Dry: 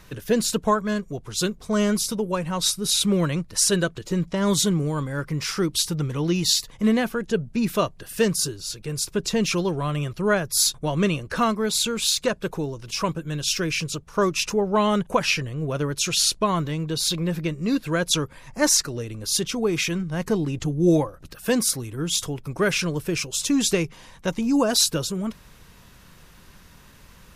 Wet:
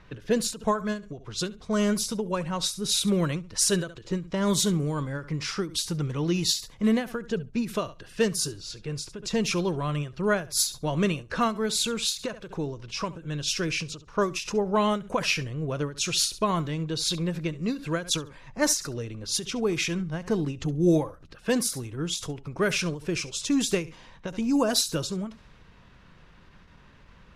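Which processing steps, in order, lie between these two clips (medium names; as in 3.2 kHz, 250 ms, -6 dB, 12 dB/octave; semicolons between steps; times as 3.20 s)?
level-controlled noise filter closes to 3 kHz, open at -17.5 dBFS; flutter echo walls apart 11.7 m, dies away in 0.22 s; endings held to a fixed fall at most 160 dB/s; trim -3 dB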